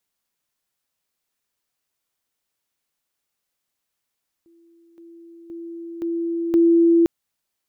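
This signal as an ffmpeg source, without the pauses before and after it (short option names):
-f lavfi -i "aevalsrc='pow(10,(-51.5+10*floor(t/0.52))/20)*sin(2*PI*336*t)':d=2.6:s=44100"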